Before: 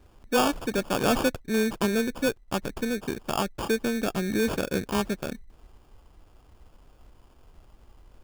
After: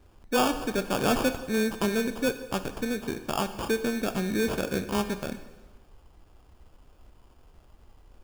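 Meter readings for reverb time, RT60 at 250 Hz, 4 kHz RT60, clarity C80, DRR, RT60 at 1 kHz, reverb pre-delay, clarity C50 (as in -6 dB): 1.2 s, 1.2 s, 1.1 s, 12.5 dB, 9.0 dB, 1.2 s, 7 ms, 11.0 dB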